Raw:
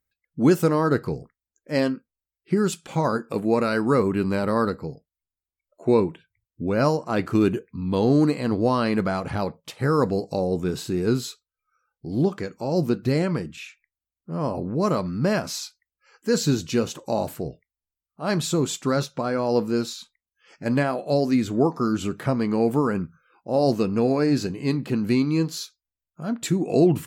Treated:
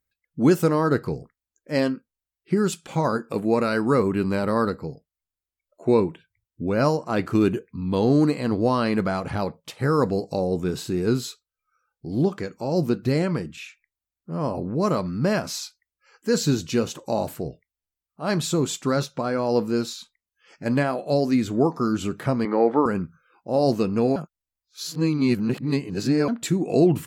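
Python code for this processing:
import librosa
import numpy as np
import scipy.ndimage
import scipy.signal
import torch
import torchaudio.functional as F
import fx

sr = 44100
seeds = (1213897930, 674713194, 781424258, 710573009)

y = fx.cabinet(x, sr, low_hz=280.0, low_slope=12, high_hz=3900.0, hz=(310.0, 530.0, 840.0, 1300.0, 1900.0, 2700.0), db=(4, 7, 7, 7, 8, -9), at=(22.45, 22.86))
y = fx.edit(y, sr, fx.reverse_span(start_s=24.16, length_s=2.12), tone=tone)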